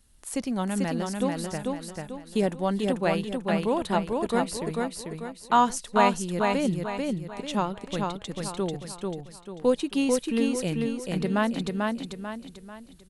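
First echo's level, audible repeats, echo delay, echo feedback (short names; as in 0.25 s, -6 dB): -3.0 dB, 5, 0.442 s, 40%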